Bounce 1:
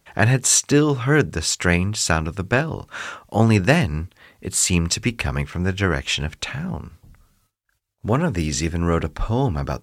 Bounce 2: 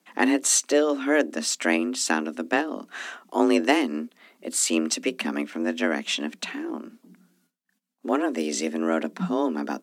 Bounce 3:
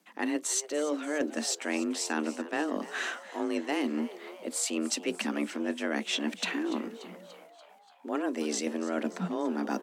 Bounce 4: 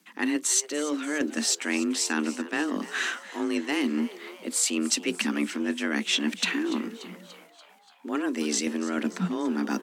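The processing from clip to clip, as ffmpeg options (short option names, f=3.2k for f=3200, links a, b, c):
-af "afreqshift=150,volume=-4.5dB"
-filter_complex "[0:a]areverse,acompressor=threshold=-30dB:ratio=10,areverse,asplit=7[a][b][c][d][e][f][g];[b]adelay=290,afreqshift=120,volume=-16dB[h];[c]adelay=580,afreqshift=240,volume=-20.4dB[i];[d]adelay=870,afreqshift=360,volume=-24.9dB[j];[e]adelay=1160,afreqshift=480,volume=-29.3dB[k];[f]adelay=1450,afreqshift=600,volume=-33.7dB[l];[g]adelay=1740,afreqshift=720,volume=-38.2dB[m];[a][h][i][j][k][l][m]amix=inputs=7:normalize=0,volume=2.5dB"
-af "equalizer=f=630:w=1.2:g=-11,volume=6.5dB"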